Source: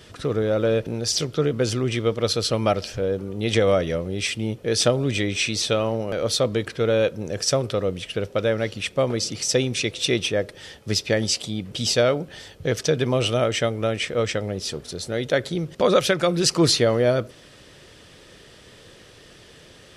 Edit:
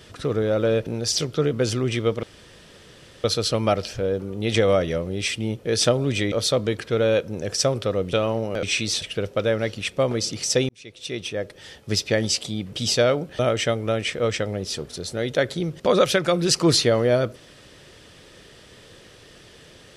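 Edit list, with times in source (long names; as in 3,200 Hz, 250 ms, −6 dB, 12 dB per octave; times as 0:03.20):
0:02.23: splice in room tone 1.01 s
0:05.31–0:05.70: swap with 0:06.20–0:08.01
0:09.68–0:10.90: fade in
0:12.38–0:13.34: remove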